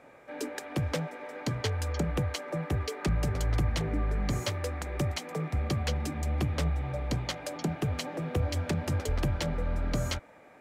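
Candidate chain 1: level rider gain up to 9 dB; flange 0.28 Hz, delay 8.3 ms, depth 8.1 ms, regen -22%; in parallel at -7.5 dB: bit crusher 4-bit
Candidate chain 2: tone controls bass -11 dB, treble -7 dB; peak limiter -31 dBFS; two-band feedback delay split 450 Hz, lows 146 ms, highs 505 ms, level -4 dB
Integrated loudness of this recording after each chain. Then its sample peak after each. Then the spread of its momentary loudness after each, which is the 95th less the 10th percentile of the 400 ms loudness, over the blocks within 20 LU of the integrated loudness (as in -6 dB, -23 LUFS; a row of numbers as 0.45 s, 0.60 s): -23.5 LUFS, -39.0 LUFS; -8.0 dBFS, -25.5 dBFS; 6 LU, 3 LU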